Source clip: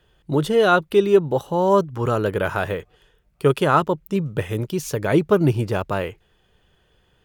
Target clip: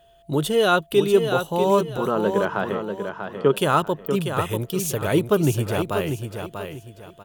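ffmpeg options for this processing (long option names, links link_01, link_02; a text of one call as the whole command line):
ffmpeg -i in.wav -filter_complex "[0:a]asettb=1/sr,asplit=3[link_01][link_02][link_03];[link_01]atrim=end=1.974[link_04];[link_02]atrim=start=1.97:end=3.56,asetpts=PTS-STARTPTS,afade=type=in:duration=0.004:curve=qsin,afade=type=out:start_time=1.586:duration=0.004:curve=qsin,highpass=frequency=120:width=0.5412,highpass=frequency=120:width=1.3066,equalizer=frequency=120:width_type=q:width=4:gain=-10,equalizer=frequency=200:width_type=q:width=4:gain=8,equalizer=frequency=390:width_type=q:width=4:gain=3,equalizer=frequency=1000:width_type=q:width=4:gain=5,equalizer=frequency=2500:width_type=q:width=4:gain=-8,equalizer=frequency=3800:width_type=q:width=4:gain=-9,lowpass=frequency=4400:width=0.5412,lowpass=frequency=4400:width=1.3066[link_05];[link_03]atrim=start=3.556[link_06];[link_04][link_05]acrossfade=duration=0.004:curve1=hsin:curve2=qsin[link_07];[link_07][link_06]acrossfade=duration=0.004:curve1=qsin:curve2=hsin,aexciter=amount=1.6:drive=6.4:freq=2800,asplit=2[link_08][link_09];[link_09]aecho=0:1:641|1282|1923|2564:0.447|0.13|0.0376|0.0109[link_10];[link_08][link_10]amix=inputs=2:normalize=0,aeval=exprs='val(0)+0.00282*sin(2*PI*680*n/s)':channel_layout=same,volume=-2.5dB" out.wav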